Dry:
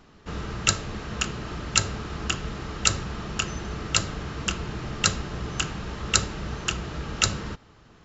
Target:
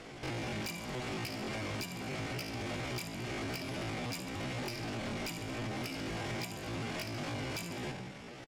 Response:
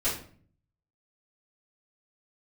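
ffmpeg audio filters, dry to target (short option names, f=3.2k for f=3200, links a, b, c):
-filter_complex "[0:a]bandreject=f=107.2:t=h:w=4,bandreject=f=214.4:t=h:w=4,bandreject=f=321.6:t=h:w=4,bandreject=f=428.8:t=h:w=4,bandreject=f=536:t=h:w=4,bandreject=f=643.2:t=h:w=4,atempo=0.95,highpass=f=47:p=1,aecho=1:1:67|134|201|268:0.251|0.103|0.0422|0.0173,asplit=2[a][b];[1:a]atrim=start_sample=2205,lowpass=5.5k,lowshelf=f=63:g=7[c];[b][c]afir=irnorm=-1:irlink=0,volume=-27dB[d];[a][d]amix=inputs=2:normalize=0,acompressor=threshold=-37dB:ratio=8,lowpass=3.7k,asetrate=78577,aresample=44100,atempo=0.561231,asoftclip=type=tanh:threshold=-40dB,volume=6.5dB"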